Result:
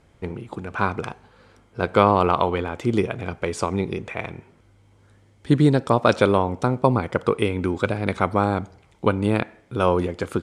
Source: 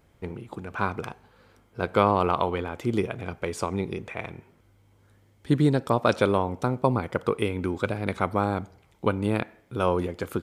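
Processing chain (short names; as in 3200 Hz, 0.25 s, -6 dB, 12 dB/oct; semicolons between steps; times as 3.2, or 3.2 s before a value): LPF 10000 Hz 24 dB/oct; gain +4.5 dB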